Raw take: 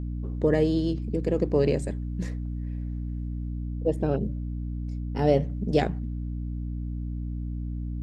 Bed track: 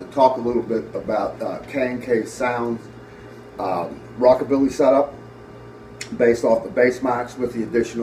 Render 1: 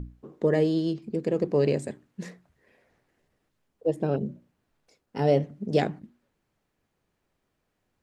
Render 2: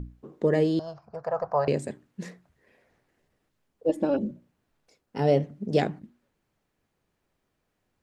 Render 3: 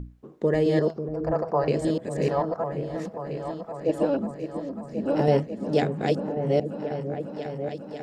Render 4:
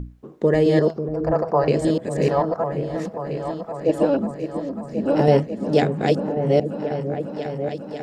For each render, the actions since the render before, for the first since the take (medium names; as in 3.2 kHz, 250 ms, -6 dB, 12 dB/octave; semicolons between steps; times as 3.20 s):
hum notches 60/120/180/240/300/360 Hz
0.79–1.68 s: FFT filter 110 Hz 0 dB, 230 Hz -23 dB, 350 Hz -26 dB, 670 Hz +14 dB, 1.4 kHz +13 dB, 2.1 kHz -9 dB, 3.4 kHz -17 dB, 5.5 kHz -2 dB, 8.1 kHz -19 dB, 12 kHz -8 dB; 3.89–4.31 s: comb 3.5 ms, depth 92%
chunks repeated in reverse 660 ms, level -1 dB; delay with an opening low-pass 544 ms, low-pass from 400 Hz, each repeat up 2 oct, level -6 dB
trim +5 dB